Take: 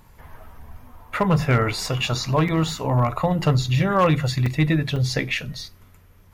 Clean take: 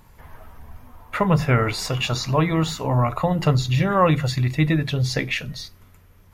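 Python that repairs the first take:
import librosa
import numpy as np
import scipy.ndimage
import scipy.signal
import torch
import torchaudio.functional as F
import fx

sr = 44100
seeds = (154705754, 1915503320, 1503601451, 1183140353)

y = fx.fix_declip(x, sr, threshold_db=-11.5)
y = fx.fix_interpolate(y, sr, at_s=(2.48, 4.46, 4.96), length_ms=4.0)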